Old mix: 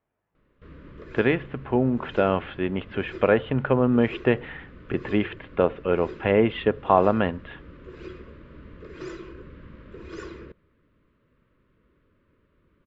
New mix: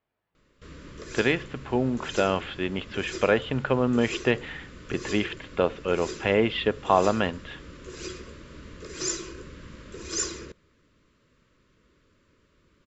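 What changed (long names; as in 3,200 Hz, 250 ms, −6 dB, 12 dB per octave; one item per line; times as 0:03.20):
speech −4.0 dB
master: remove high-frequency loss of the air 490 metres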